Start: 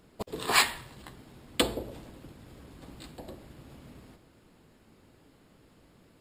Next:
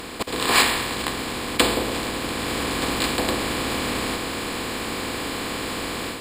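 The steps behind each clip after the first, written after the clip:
compressor on every frequency bin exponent 0.4
automatic gain control gain up to 7 dB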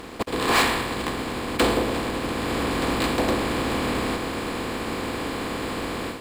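high-shelf EQ 2,300 Hz −9.5 dB
leveller curve on the samples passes 3
expander for the loud parts 1.5 to 1, over −25 dBFS
level −5.5 dB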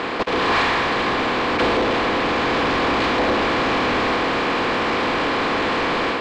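mid-hump overdrive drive 28 dB, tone 5,800 Hz, clips at −12 dBFS
high-frequency loss of the air 180 metres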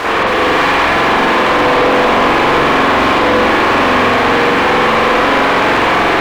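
mid-hump overdrive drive 34 dB, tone 2,200 Hz, clips at −12.5 dBFS
spring reverb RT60 1.1 s, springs 44 ms, chirp 30 ms, DRR −8 dB
soft clipping −4.5 dBFS, distortion −16 dB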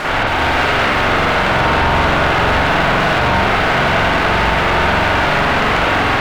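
ring modulation 420 Hz

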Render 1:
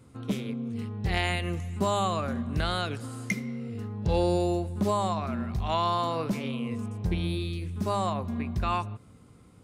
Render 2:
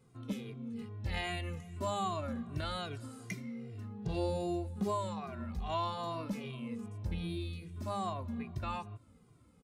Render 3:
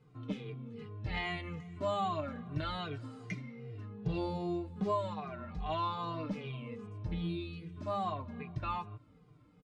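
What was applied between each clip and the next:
barber-pole flanger 2 ms −2.5 Hz; level −6 dB
low-pass filter 3,700 Hz 12 dB per octave; comb filter 6.6 ms, depth 61%

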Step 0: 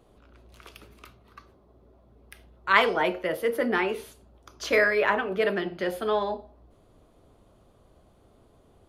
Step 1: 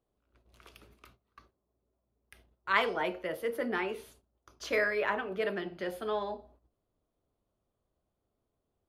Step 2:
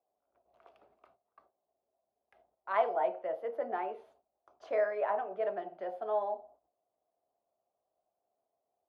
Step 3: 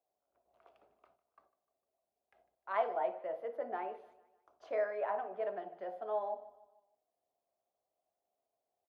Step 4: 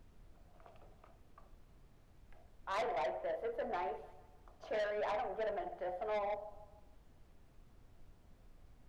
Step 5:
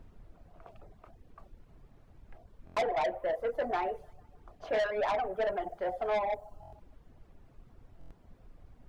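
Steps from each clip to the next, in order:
noise gate −52 dBFS, range −16 dB; level −7.5 dB
resonant band-pass 710 Hz, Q 5.2; level +9 dB
repeating echo 151 ms, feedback 47%, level −20 dB; convolution reverb RT60 0.20 s, pre-delay 55 ms, DRR 16.5 dB; level −4 dB
soft clipping −37.5 dBFS, distortion −8 dB; background noise brown −63 dBFS; level +4 dB
reverb reduction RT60 0.61 s; buffer that repeats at 0:02.65/0:06.61/0:07.99, samples 1,024, times 4; one half of a high-frequency compander decoder only; level +8 dB

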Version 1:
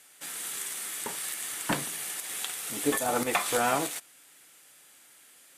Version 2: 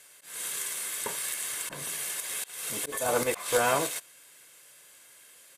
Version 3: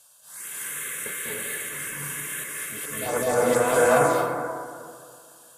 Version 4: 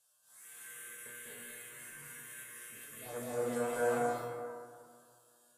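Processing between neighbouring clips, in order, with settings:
volume swells 212 ms; comb filter 1.9 ms, depth 47%; level +1 dB
phaser swept by the level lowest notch 330 Hz, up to 4,300 Hz, full sweep at −22 dBFS; convolution reverb RT60 2.2 s, pre-delay 186 ms, DRR −7 dB
tuned comb filter 120 Hz, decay 0.67 s, harmonics all, mix 90%; level −4.5 dB

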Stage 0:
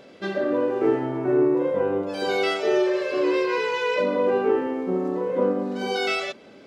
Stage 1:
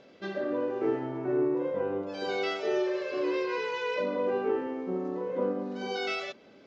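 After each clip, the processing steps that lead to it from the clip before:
Butterworth low-pass 6,900 Hz 48 dB per octave
level −7.5 dB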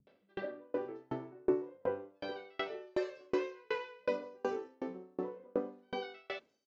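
three-band delay without the direct sound lows, mids, highs 70/730 ms, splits 170/4,800 Hz
tremolo with a ramp in dB decaying 2.7 Hz, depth 38 dB
level +1.5 dB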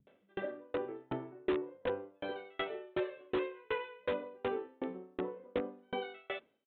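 in parallel at −5 dB: wrap-around overflow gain 27 dB
on the sum: downsampling to 8,000 Hz
level −2.5 dB

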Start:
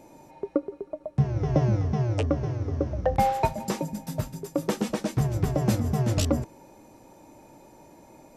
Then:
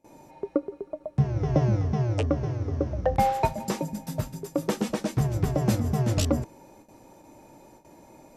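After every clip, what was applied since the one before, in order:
noise gate with hold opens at −42 dBFS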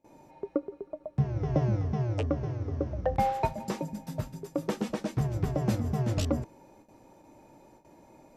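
parametric band 11,000 Hz −6 dB 1.8 octaves
level −4 dB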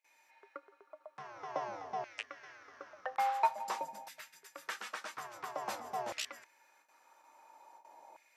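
auto-filter high-pass saw down 0.49 Hz 760–2,100 Hz
level −2.5 dB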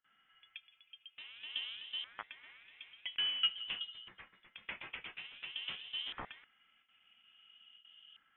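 voice inversion scrambler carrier 3,800 Hz
level −3 dB

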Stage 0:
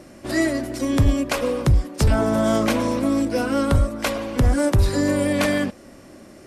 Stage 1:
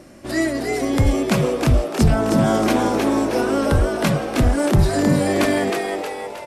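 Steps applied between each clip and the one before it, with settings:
echo with shifted repeats 314 ms, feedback 50%, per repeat +100 Hz, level −4 dB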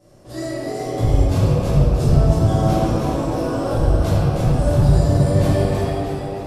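octave-band graphic EQ 125/250/2,000 Hz +9/−8/−10 dB
convolution reverb RT60 2.9 s, pre-delay 4 ms, DRR −14 dB
level −15.5 dB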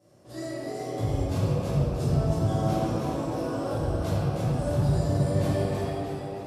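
high-pass filter 84 Hz
level −8 dB

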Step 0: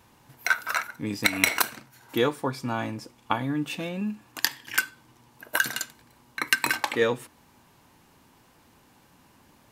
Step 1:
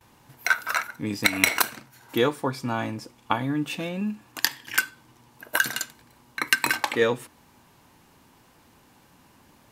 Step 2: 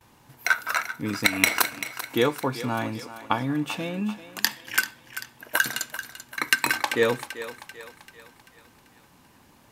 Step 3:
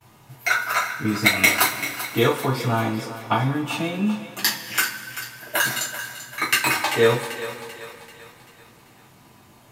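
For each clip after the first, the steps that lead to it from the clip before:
noise gate with hold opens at −51 dBFS; level +1.5 dB
feedback echo with a high-pass in the loop 389 ms, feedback 51%, high-pass 440 Hz, level −12 dB
coupled-rooms reverb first 0.24 s, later 2.8 s, from −22 dB, DRR −8.5 dB; level −4.5 dB

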